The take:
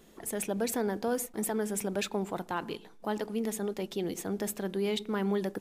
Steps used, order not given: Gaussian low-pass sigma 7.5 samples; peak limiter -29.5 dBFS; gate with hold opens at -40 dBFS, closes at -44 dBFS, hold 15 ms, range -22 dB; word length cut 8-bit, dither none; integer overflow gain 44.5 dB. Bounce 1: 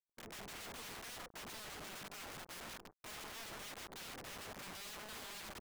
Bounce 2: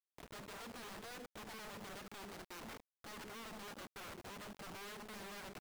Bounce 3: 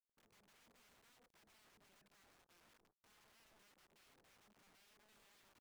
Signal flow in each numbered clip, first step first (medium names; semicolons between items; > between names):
word length cut > gate with hold > Gaussian low-pass > peak limiter > integer overflow; Gaussian low-pass > gate with hold > peak limiter > word length cut > integer overflow; peak limiter > word length cut > Gaussian low-pass > integer overflow > gate with hold